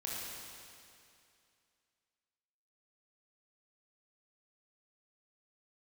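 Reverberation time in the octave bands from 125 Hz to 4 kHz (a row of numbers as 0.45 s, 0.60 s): 2.4 s, 2.5 s, 2.5 s, 2.5 s, 2.5 s, 2.4 s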